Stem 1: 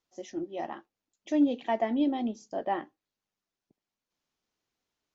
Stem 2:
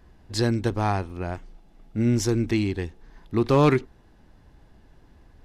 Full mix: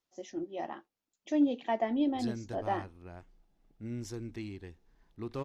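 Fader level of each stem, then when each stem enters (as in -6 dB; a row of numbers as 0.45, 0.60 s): -2.5, -17.5 dB; 0.00, 1.85 s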